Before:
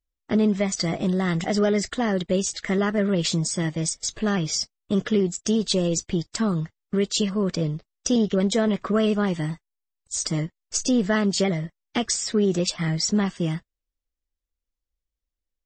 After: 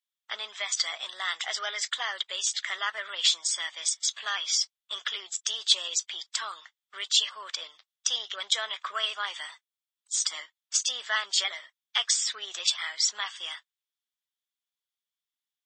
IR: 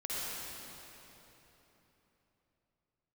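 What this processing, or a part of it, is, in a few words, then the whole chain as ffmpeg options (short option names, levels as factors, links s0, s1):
headphones lying on a table: -af "highpass=f=1000:w=0.5412,highpass=f=1000:w=1.3066,equalizer=f=3400:t=o:w=0.3:g=10.5"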